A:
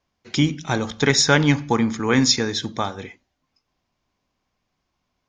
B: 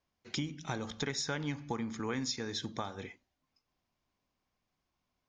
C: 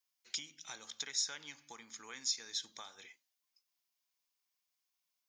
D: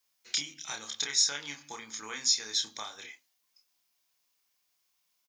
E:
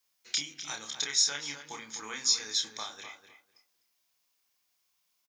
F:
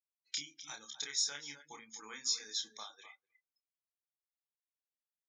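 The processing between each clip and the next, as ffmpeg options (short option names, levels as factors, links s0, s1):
-af "acompressor=threshold=0.0562:ratio=5,volume=0.376"
-af "aderivative,volume=1.68"
-filter_complex "[0:a]asplit=2[s0][s1];[s1]adelay=28,volume=0.668[s2];[s0][s2]amix=inputs=2:normalize=0,volume=2.51"
-filter_complex "[0:a]asplit=2[s0][s1];[s1]adelay=251,lowpass=f=2300:p=1,volume=0.376,asplit=2[s2][s3];[s3]adelay=251,lowpass=f=2300:p=1,volume=0.2,asplit=2[s4][s5];[s5]adelay=251,lowpass=f=2300:p=1,volume=0.2[s6];[s0][s2][s4][s6]amix=inputs=4:normalize=0"
-af "afftdn=nr=31:nf=-45,volume=0.398"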